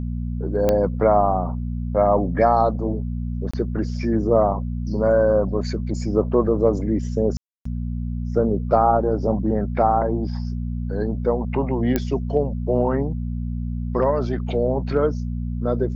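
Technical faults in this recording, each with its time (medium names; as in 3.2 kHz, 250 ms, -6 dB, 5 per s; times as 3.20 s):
hum 60 Hz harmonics 4 -26 dBFS
0.69 s: pop -7 dBFS
3.51–3.54 s: dropout 25 ms
7.37–7.65 s: dropout 284 ms
11.96 s: pop -7 dBFS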